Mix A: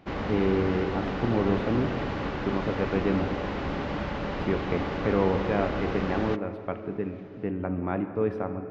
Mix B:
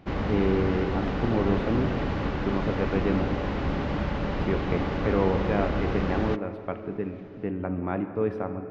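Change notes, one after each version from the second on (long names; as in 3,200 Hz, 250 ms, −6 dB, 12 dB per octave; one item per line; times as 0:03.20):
background: add low-shelf EQ 200 Hz +7 dB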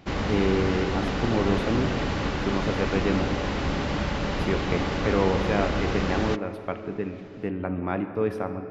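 master: remove head-to-tape spacing loss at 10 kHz 22 dB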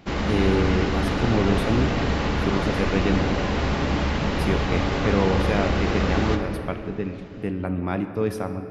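speech: add bass and treble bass +5 dB, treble +15 dB
background: send on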